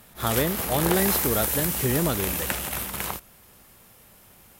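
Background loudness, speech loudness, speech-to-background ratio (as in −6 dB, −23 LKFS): −25.5 LKFS, −27.0 LKFS, −1.5 dB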